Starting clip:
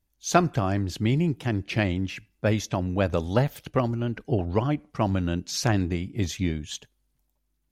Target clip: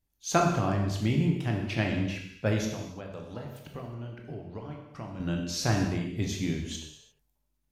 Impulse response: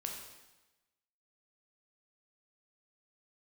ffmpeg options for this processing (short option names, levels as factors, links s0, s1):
-filter_complex "[0:a]asettb=1/sr,asplit=3[s0][s1][s2];[s0]atrim=end=2.644[s3];[s1]atrim=start=2.64:end=5.2,asetpts=PTS-STARTPTS,afade=t=in:d=0.004:c=qsin,afade=t=out:st=2.556:d=0.004:c=qsin,acompressor=threshold=0.0158:ratio=4[s4];[s2]atrim=start=5.196[s5];[s3][s4]acrossfade=d=0.004:c1=hsin:c2=qsin[s6];[s6][s5]acrossfade=d=0.004:c1=qsin:c2=hsin[s7];[1:a]atrim=start_sample=2205,afade=t=out:st=0.41:d=0.01,atrim=end_sample=18522[s8];[s7][s8]afir=irnorm=-1:irlink=0,volume=0.794"